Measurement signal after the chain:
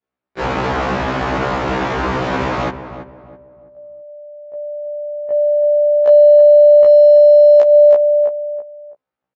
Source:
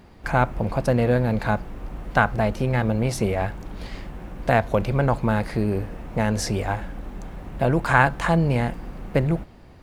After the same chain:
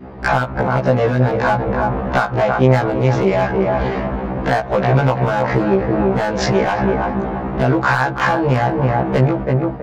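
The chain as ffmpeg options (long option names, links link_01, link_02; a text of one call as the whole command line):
ffmpeg -i in.wav -filter_complex "[0:a]adynamicsmooth=sensitivity=2.5:basefreq=1200,highpass=76,equalizer=frequency=120:width=0.49:gain=-4.5,asplit=2[link_01][link_02];[link_02]adelay=329,lowpass=frequency=1400:poles=1,volume=-10dB,asplit=2[link_03][link_04];[link_04]adelay=329,lowpass=frequency=1400:poles=1,volume=0.35,asplit=2[link_05][link_06];[link_06]adelay=329,lowpass=frequency=1400:poles=1,volume=0.35,asplit=2[link_07][link_08];[link_08]adelay=329,lowpass=frequency=1400:poles=1,volume=0.35[link_09];[link_01][link_03][link_05][link_07][link_09]amix=inputs=5:normalize=0,acompressor=threshold=-26dB:ratio=12,aresample=16000,aresample=44100,aeval=exprs='clip(val(0),-1,0.0841)':channel_layout=same,adynamicequalizer=threshold=0.00631:dfrequency=1000:dqfactor=0.94:tfrequency=1000:tqfactor=0.94:attack=5:release=100:ratio=0.375:range=1.5:mode=boostabove:tftype=bell,alimiter=level_in=25dB:limit=-1dB:release=50:level=0:latency=1,afftfilt=real='re*1.73*eq(mod(b,3),0)':imag='im*1.73*eq(mod(b,3),0)':win_size=2048:overlap=0.75,volume=-3dB" out.wav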